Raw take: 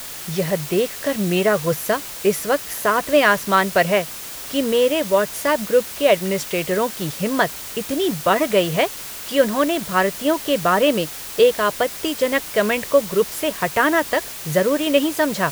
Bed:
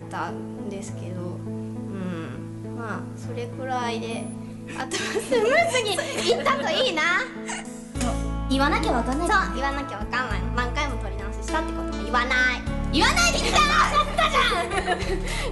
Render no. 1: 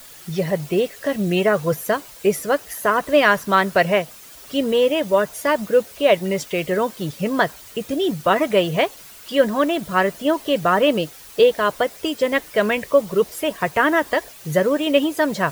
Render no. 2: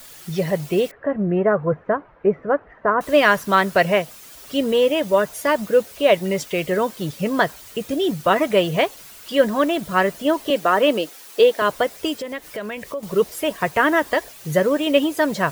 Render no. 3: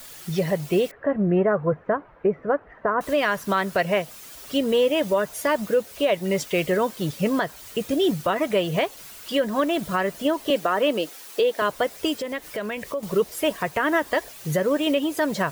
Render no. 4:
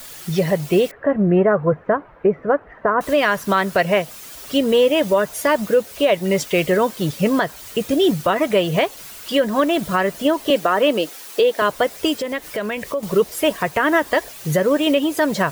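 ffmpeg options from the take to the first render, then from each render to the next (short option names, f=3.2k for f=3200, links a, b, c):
-af "afftdn=nr=11:nf=-33"
-filter_complex "[0:a]asettb=1/sr,asplit=3[a][b][c];[a]atrim=end=0.914[d];[b]atrim=start=0.91:end=3.01,asetpts=PTS-STARTPTS,afade=t=in:d=0.004:c=qsin,afade=t=out:st=2.096:d=0.004:c=qsin,lowpass=f=1.6k:w=0.5412,lowpass=f=1.6k:w=1.3066[e];[c]atrim=start=3.006[f];[d][e]acrossfade=d=0.004:c1=hsin:c2=qsin[g];[g][f]acrossfade=d=0.004:c1=qsin:c2=hsin,asettb=1/sr,asplit=3[h][i][j];[h]atrim=end=10.504[k];[i]atrim=start=10.5:end=11.62,asetpts=PTS-STARTPTS,afade=t=in:d=0.004:c=qsin,afade=t=out:st=1.116:d=0.004:c=qsin,highpass=f=230:w=0.5412,highpass=f=230:w=1.3066[l];[j]atrim=start=11.616[m];[k][l]acrossfade=d=0.004:c1=hsin:c2=qsin[n];[n][m]acrossfade=d=0.004:c1=qsin:c2=hsin,asettb=1/sr,asplit=3[o][p][q];[o]atrim=end=12.134[r];[p]atrim=start=12.13:end=13.03,asetpts=PTS-STARTPTS,afade=t=in:d=0.004:c=qsin,afade=t=out:st=0.896:d=0.004:c=qsin,acompressor=threshold=-29dB:ratio=3:attack=3.2:release=140:knee=1:detection=peak[s];[q]atrim=start=13.026[t];[r][s]acrossfade=d=0.004:c1=hsin:c2=qsin[u];[u][t]acrossfade=d=0.004:c1=qsin:c2=hsin"
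-af "alimiter=limit=-12dB:level=0:latency=1:release=236"
-af "volume=5dB"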